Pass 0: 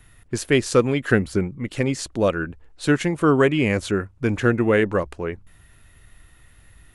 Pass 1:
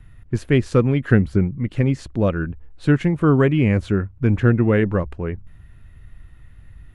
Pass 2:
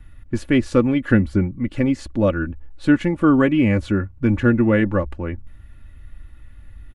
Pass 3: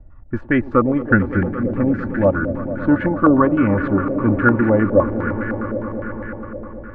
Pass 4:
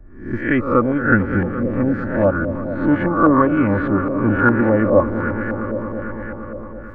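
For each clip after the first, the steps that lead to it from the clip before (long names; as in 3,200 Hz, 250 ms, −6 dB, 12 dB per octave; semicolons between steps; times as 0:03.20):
bass and treble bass +11 dB, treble −12 dB; level −2.5 dB
comb filter 3.5 ms, depth 63%
echo that builds up and dies away 113 ms, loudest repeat 5, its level −15 dB; low-pass on a step sequencer 9.8 Hz 620–1,600 Hz; level −1 dB
peak hold with a rise ahead of every peak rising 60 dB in 0.50 s; level −1.5 dB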